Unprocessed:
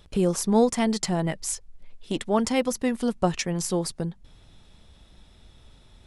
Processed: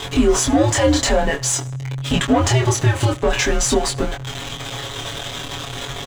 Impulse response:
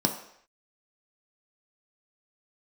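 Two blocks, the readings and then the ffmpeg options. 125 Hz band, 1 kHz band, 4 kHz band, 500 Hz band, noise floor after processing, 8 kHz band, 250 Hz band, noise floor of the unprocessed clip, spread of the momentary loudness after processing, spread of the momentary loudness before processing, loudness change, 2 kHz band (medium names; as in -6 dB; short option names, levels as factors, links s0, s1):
+12.0 dB, +7.5 dB, +12.5 dB, +6.5 dB, -31 dBFS, +11.0 dB, +5.0 dB, -55 dBFS, 12 LU, 11 LU, +6.5 dB, +13.0 dB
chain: -filter_complex "[0:a]aeval=exprs='val(0)+0.5*0.0224*sgn(val(0))':c=same,aecho=1:1:7.2:0.84,asplit=2[s0][s1];[s1]highpass=f=720:p=1,volume=7.08,asoftclip=type=tanh:threshold=0.473[s2];[s0][s2]amix=inputs=2:normalize=0,lowpass=f=1600:p=1,volume=0.501,superequalizer=13b=1.41:15b=2,aecho=1:1:77|154|231:0.0708|0.0297|0.0125,afreqshift=-140,alimiter=limit=0.224:level=0:latency=1:release=58,flanger=delay=22.5:depth=3.8:speed=0.48,volume=2.66"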